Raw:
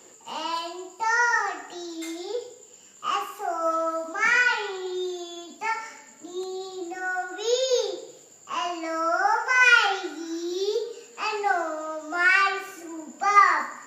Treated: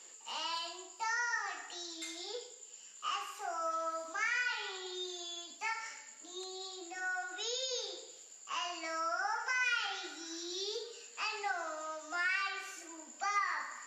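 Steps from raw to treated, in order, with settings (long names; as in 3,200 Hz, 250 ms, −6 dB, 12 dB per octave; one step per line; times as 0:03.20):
spectral tilt +5 dB per octave
downward compressor 3 to 1, threshold −25 dBFS, peak gain reduction 12.5 dB
high-frequency loss of the air 96 metres
level −8 dB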